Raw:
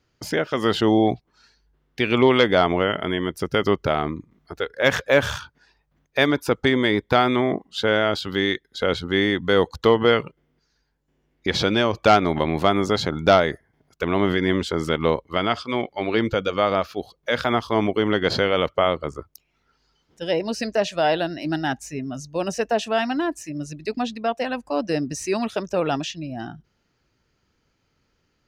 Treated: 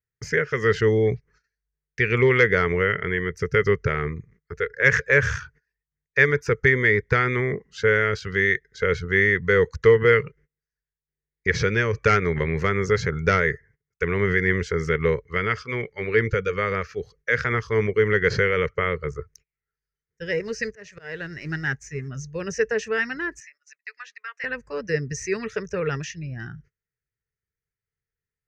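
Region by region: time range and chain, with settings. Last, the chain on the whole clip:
20.31–22.08 G.711 law mismatch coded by A + auto swell 0.383 s
23.4–24.44 HPF 1200 Hz 24 dB/oct + high shelf 3400 Hz -10 dB
whole clip: gate -51 dBFS, range -25 dB; EQ curve 140 Hz 0 dB, 300 Hz -20 dB, 440 Hz 0 dB, 690 Hz -26 dB, 1900 Hz +4 dB, 3500 Hz -20 dB, 6200 Hz -4 dB, 10000 Hz -26 dB; gain +5 dB

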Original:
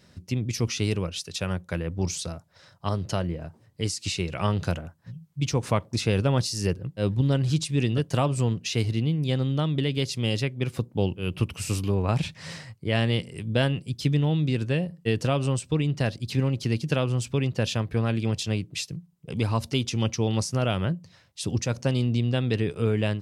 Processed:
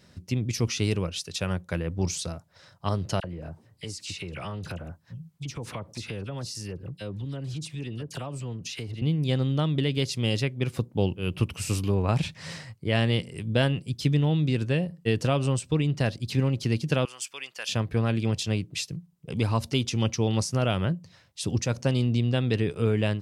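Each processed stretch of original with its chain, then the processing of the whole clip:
3.2–9.02 dispersion lows, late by 40 ms, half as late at 1900 Hz + compressor 4:1, threshold -33 dBFS
17.05–17.69 HPF 1300 Hz + high shelf 6700 Hz +4.5 dB + notch 3900 Hz, Q 7.6
whole clip: dry

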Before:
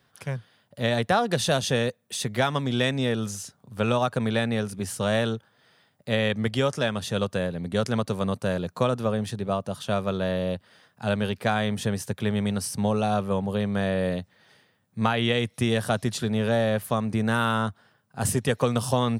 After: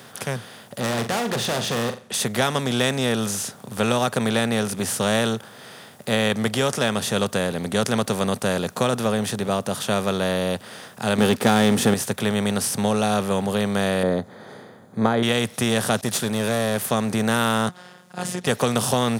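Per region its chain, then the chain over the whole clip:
0.8–2.14 LPF 4000 Hz + overloaded stage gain 26.5 dB + flutter echo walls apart 7.3 m, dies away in 0.2 s
11.18–11.94 bell 250 Hz +14.5 dB 0.91 oct + comb 2.3 ms, depth 38% + sample leveller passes 1
14.03–15.23 running mean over 16 samples + bell 370 Hz +7 dB 1.8 oct
16.01–16.86 expander -36 dBFS + high shelf 6100 Hz +9.5 dB + tube stage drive 16 dB, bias 0.65
17.69–18.47 compressor 2:1, threshold -29 dBFS + LPF 6400 Hz + robotiser 180 Hz
whole clip: per-bin compression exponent 0.6; HPF 110 Hz; high shelf 5100 Hz +8.5 dB; gain -1 dB

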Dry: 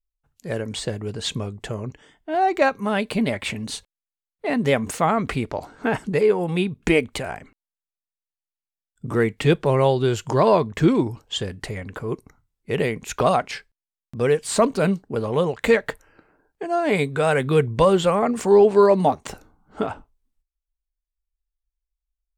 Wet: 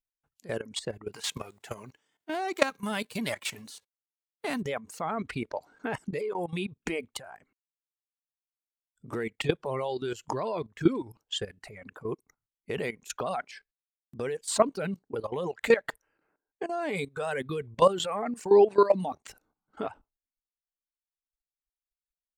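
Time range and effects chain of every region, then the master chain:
1.12–4.6 spectral whitening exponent 0.6 + HPF 84 Hz
whole clip: low shelf 120 Hz -11.5 dB; reverb removal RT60 1.7 s; level quantiser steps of 15 dB; gain -1 dB

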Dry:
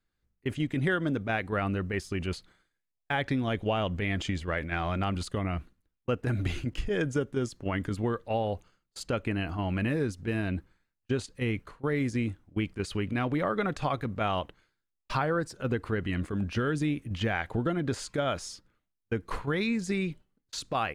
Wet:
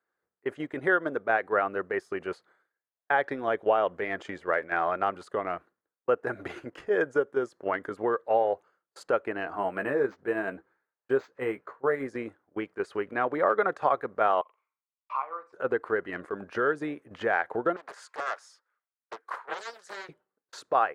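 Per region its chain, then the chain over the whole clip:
9.53–12.07 doubler 15 ms -7.5 dB + decimation joined by straight lines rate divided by 4×
14.41–15.53 double band-pass 1600 Hz, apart 1.1 oct + flutter echo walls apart 7.5 m, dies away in 0.26 s
17.76–20.09 Bessel high-pass 1300 Hz + Doppler distortion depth 0.96 ms
whole clip: HPF 180 Hz 12 dB/oct; band shelf 820 Hz +15.5 dB 2.7 oct; transient shaper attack 0 dB, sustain -5 dB; gain -9 dB

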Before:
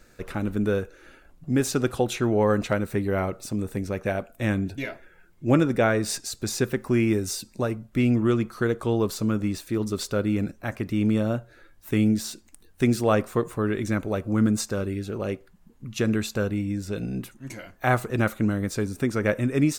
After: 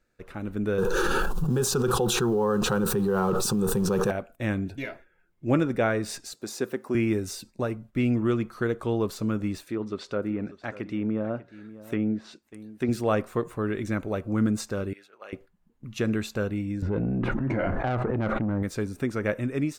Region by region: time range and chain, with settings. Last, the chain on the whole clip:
0.78–4.11 G.711 law mismatch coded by mu + fixed phaser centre 420 Hz, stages 8 + fast leveller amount 100%
6.33–6.95 HPF 240 Hz + bell 2300 Hz -5 dB 1.4 oct
9.63–12.89 HPF 210 Hz 6 dB/oct + treble ducked by the level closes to 1400 Hz, closed at -21.5 dBFS + echo 0.592 s -16.5 dB
14.93–15.33 HPF 1100 Hz + high shelf 3400 Hz -10 dB
16.82–18.63 LPF 1200 Hz + tube stage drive 20 dB, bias 0.3 + fast leveller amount 100%
whole clip: gate -44 dBFS, range -9 dB; tone controls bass -1 dB, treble -5 dB; AGC gain up to 6.5 dB; gain -8.5 dB

